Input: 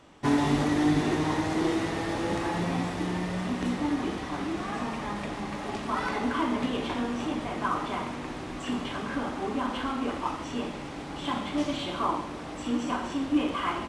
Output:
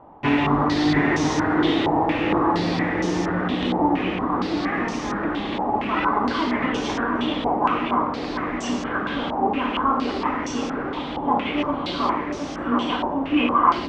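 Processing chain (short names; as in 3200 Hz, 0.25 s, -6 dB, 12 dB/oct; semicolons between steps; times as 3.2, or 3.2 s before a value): narrowing echo 0.717 s, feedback 72%, band-pass 400 Hz, level -3 dB; stepped low-pass 4.3 Hz 860–6000 Hz; gain +3.5 dB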